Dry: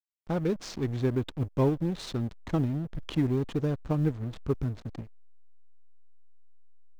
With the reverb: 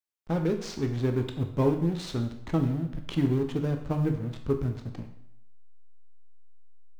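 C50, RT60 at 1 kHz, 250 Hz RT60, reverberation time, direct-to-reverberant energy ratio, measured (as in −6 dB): 9.0 dB, 0.70 s, 0.80 s, 0.75 s, 4.5 dB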